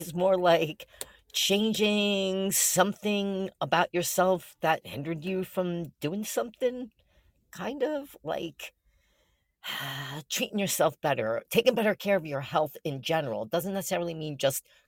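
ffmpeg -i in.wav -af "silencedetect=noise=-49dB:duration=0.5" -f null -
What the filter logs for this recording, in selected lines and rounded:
silence_start: 6.88
silence_end: 7.53 | silence_duration: 0.65
silence_start: 8.69
silence_end: 9.63 | silence_duration: 0.94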